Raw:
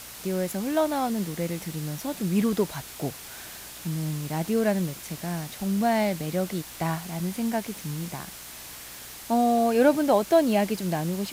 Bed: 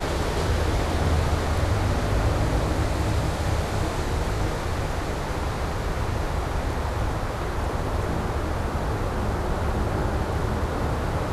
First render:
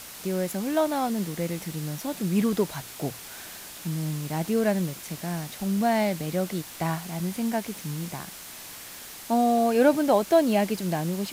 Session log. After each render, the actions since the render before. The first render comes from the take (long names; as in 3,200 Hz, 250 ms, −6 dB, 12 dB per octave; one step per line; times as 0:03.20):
hum removal 60 Hz, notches 2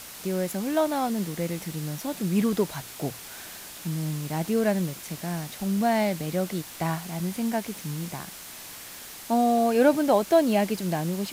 no processing that can be heard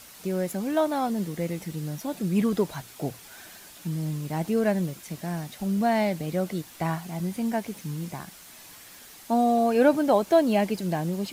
broadband denoise 7 dB, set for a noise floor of −42 dBFS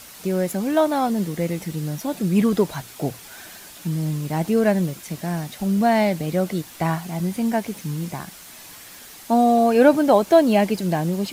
level +5.5 dB